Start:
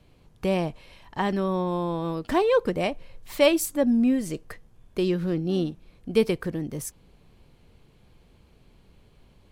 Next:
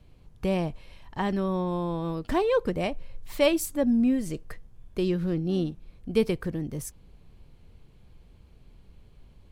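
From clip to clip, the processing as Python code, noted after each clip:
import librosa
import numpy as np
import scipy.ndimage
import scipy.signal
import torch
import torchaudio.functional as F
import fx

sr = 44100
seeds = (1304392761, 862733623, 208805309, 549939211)

y = fx.low_shelf(x, sr, hz=120.0, db=10.0)
y = y * librosa.db_to_amplitude(-3.5)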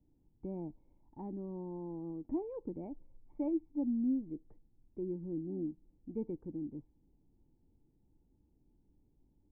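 y = fx.formant_cascade(x, sr, vowel='u')
y = y * librosa.db_to_amplitude(-4.0)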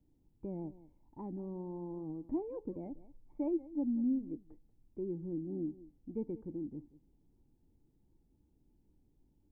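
y = x + 10.0 ** (-17.5 / 20.0) * np.pad(x, (int(187 * sr / 1000.0), 0))[:len(x)]
y = fx.record_warp(y, sr, rpm=78.0, depth_cents=100.0)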